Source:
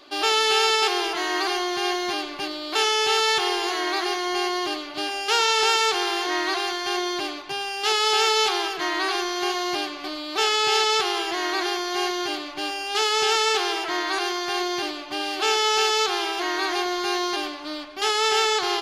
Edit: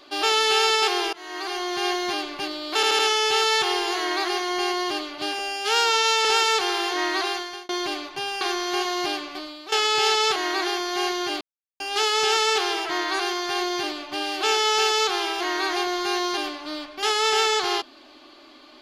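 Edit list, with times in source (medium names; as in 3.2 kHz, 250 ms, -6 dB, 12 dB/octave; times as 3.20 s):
1.13–1.83 s: fade in, from -21 dB
2.75 s: stutter 0.08 s, 4 plays
5.15–5.58 s: stretch 2×
6.62–7.02 s: fade out
7.74–9.10 s: delete
9.92–10.41 s: fade out, to -14.5 dB
11.05–11.35 s: delete
12.40–12.79 s: mute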